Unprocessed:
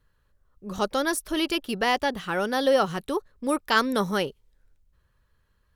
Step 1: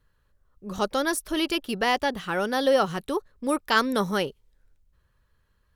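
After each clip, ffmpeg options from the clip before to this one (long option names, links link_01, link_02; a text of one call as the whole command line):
ffmpeg -i in.wav -af anull out.wav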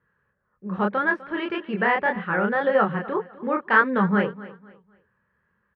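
ffmpeg -i in.wav -af "flanger=delay=22.5:depth=7.6:speed=1.8,highpass=160,equalizer=frequency=200:width_type=q:width=4:gain=8,equalizer=frequency=280:width_type=q:width=4:gain=-9,equalizer=frequency=660:width_type=q:width=4:gain=-5,equalizer=frequency=1700:width_type=q:width=4:gain=5,lowpass=frequency=2100:width=0.5412,lowpass=frequency=2100:width=1.3066,aecho=1:1:252|504|756:0.126|0.0378|0.0113,volume=6.5dB" out.wav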